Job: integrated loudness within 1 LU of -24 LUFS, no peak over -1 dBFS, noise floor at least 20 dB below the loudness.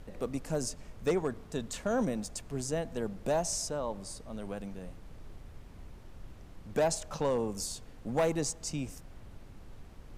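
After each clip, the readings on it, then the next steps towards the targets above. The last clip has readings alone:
clipped samples 0.4%; clipping level -22.0 dBFS; noise floor -51 dBFS; noise floor target -54 dBFS; loudness -34.0 LUFS; peak level -22.0 dBFS; loudness target -24.0 LUFS
-> clip repair -22 dBFS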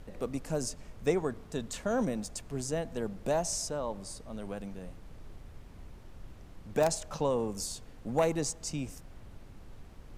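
clipped samples 0.0%; noise floor -51 dBFS; noise floor target -54 dBFS
-> noise print and reduce 6 dB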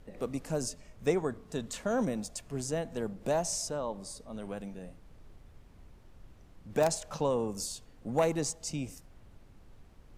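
noise floor -57 dBFS; loudness -34.0 LUFS; peak level -13.0 dBFS; loudness target -24.0 LUFS
-> trim +10 dB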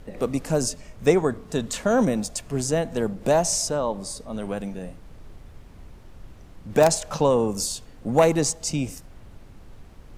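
loudness -24.0 LUFS; peak level -3.0 dBFS; noise floor -47 dBFS

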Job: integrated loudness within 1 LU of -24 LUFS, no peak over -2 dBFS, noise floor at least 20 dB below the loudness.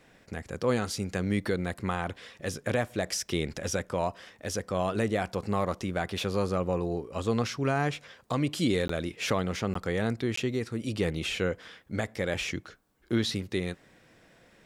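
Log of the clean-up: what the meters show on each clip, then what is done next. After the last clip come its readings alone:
dropouts 3; longest dropout 14 ms; loudness -31.0 LUFS; peak level -15.5 dBFS; loudness target -24.0 LUFS
-> interpolate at 8.88/9.74/10.36 s, 14 ms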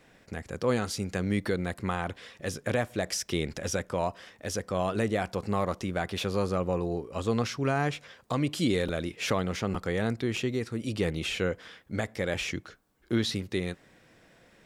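dropouts 0; loudness -31.0 LUFS; peak level -15.5 dBFS; loudness target -24.0 LUFS
-> trim +7 dB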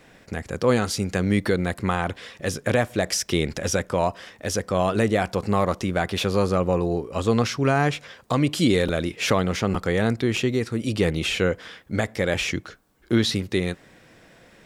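loudness -24.0 LUFS; peak level -8.5 dBFS; noise floor -53 dBFS

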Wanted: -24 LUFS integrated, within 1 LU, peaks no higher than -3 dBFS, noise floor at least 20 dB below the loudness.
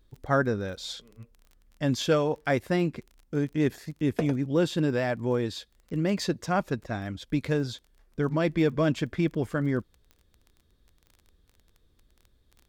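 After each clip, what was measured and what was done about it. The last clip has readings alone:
tick rate 23 per s; loudness -28.0 LUFS; peak level -11.0 dBFS; loudness target -24.0 LUFS
-> de-click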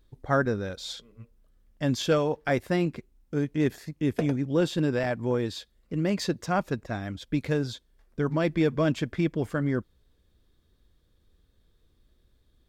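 tick rate 0 per s; loudness -28.0 LUFS; peak level -11.0 dBFS; loudness target -24.0 LUFS
-> trim +4 dB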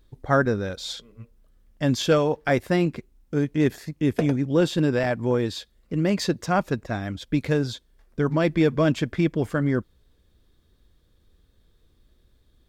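loudness -24.0 LUFS; peak level -7.0 dBFS; noise floor -63 dBFS

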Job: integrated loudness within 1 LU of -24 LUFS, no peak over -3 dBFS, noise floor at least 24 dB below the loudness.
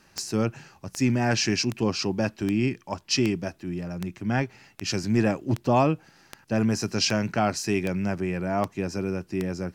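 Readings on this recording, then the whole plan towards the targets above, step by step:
clicks found 13; loudness -26.5 LUFS; peak level -10.0 dBFS; loudness target -24.0 LUFS
-> de-click; trim +2.5 dB

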